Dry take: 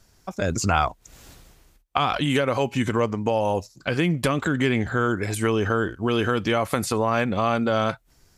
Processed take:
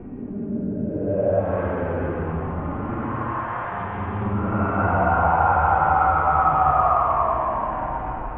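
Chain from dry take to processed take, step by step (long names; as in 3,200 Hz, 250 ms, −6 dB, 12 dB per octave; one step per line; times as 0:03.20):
linear delta modulator 16 kbit/s, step −22 dBFS
extreme stretch with random phases 14×, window 0.10 s, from 0:00.35
low-pass filter sweep 280 Hz → 1,100 Hz, 0:00.86–0:01.63
level −2 dB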